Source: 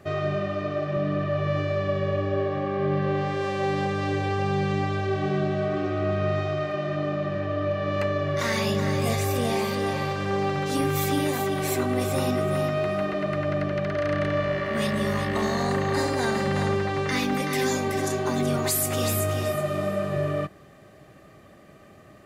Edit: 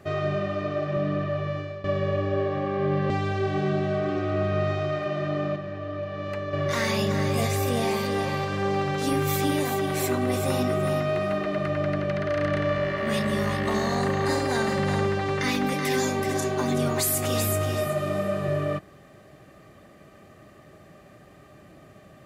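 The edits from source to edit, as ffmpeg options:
ffmpeg -i in.wav -filter_complex "[0:a]asplit=5[link_01][link_02][link_03][link_04][link_05];[link_01]atrim=end=1.84,asetpts=PTS-STARTPTS,afade=type=out:start_time=0.91:duration=0.93:curve=qsin:silence=0.177828[link_06];[link_02]atrim=start=1.84:end=3.102,asetpts=PTS-STARTPTS,afade=type=in:duration=0.004:curve=hsin:silence=0.177828[link_07];[link_03]atrim=start=4.778:end=7.242[link_08];[link_04]atrim=start=7.238:end=8.212,asetpts=PTS-STARTPTS,volume=-6dB[link_09];[link_05]atrim=start=8.208[link_10];[link_06][link_07]concat=n=2:v=0:a=1[link_11];[link_11][link_08]acrossfade=duration=0.004:curve1=hsin:curve2=hsin[link_12];[link_12][link_09]acrossfade=duration=0.004:curve1=hsin:curve2=hsin[link_13];[link_13][link_10]acrossfade=duration=0.004:curve1=hsin:curve2=hsin" out.wav

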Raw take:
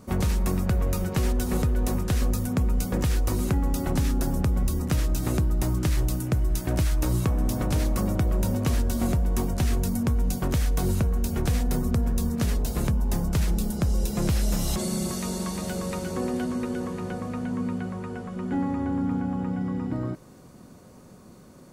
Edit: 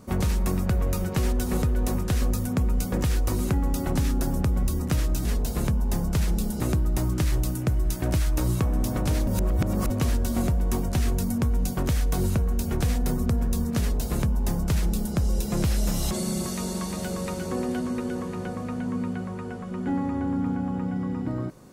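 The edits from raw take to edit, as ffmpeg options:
ffmpeg -i in.wav -filter_complex "[0:a]asplit=5[link_01][link_02][link_03][link_04][link_05];[link_01]atrim=end=5.252[link_06];[link_02]atrim=start=12.448:end=13.802[link_07];[link_03]atrim=start=5.248:end=7.922[link_08];[link_04]atrim=start=7.918:end=8.552,asetpts=PTS-STARTPTS,areverse[link_09];[link_05]atrim=start=8.548[link_10];[link_06][link_07]acrossfade=duration=0.004:curve1=hsin:curve2=hsin[link_11];[link_11][link_08]acrossfade=duration=0.004:curve1=hsin:curve2=hsin[link_12];[link_12][link_09]acrossfade=duration=0.004:curve1=hsin:curve2=hsin[link_13];[link_13][link_10]acrossfade=duration=0.004:curve1=hsin:curve2=hsin" out.wav

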